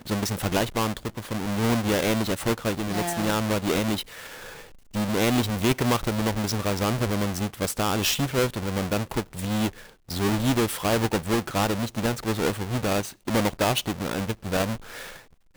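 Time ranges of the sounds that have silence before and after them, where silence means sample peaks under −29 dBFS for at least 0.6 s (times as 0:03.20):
0:04.95–0:14.75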